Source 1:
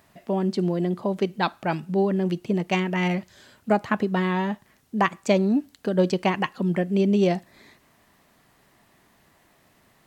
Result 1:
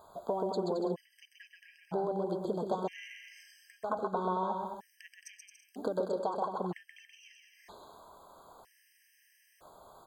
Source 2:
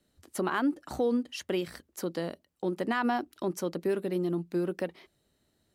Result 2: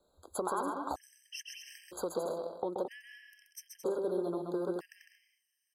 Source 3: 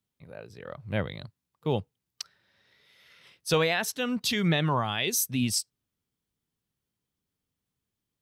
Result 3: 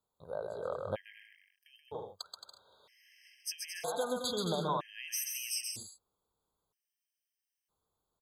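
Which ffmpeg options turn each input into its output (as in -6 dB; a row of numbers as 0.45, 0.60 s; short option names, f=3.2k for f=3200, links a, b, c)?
-af "equalizer=f=125:t=o:w=1:g=-8,equalizer=f=250:t=o:w=1:g=-8,equalizer=f=500:t=o:w=1:g=7,equalizer=f=1k:t=o:w=1:g=10,equalizer=f=2k:t=o:w=1:g=-10,acompressor=threshold=-32dB:ratio=6,aecho=1:1:130|221|284.7|329.3|360.5:0.631|0.398|0.251|0.158|0.1,afftfilt=real='re*gt(sin(2*PI*0.52*pts/sr)*(1-2*mod(floor(b*sr/1024/1600),2)),0)':imag='im*gt(sin(2*PI*0.52*pts/sr)*(1-2*mod(floor(b*sr/1024/1600),2)),0)':win_size=1024:overlap=0.75"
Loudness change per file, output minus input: -11.0, -5.5, -9.5 LU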